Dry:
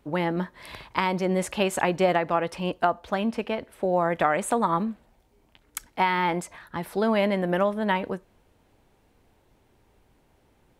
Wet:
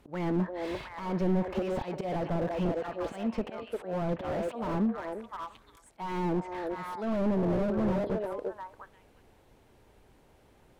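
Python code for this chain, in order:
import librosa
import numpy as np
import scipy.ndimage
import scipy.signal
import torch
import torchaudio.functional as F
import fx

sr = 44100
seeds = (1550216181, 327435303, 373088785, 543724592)

y = fx.auto_swell(x, sr, attack_ms=300.0)
y = fx.env_lowpass_down(y, sr, base_hz=610.0, full_db=-21.5)
y = fx.echo_stepped(y, sr, ms=349, hz=510.0, octaves=1.4, feedback_pct=70, wet_db=-2.0)
y = fx.slew_limit(y, sr, full_power_hz=16.0)
y = y * 10.0 ** (1.5 / 20.0)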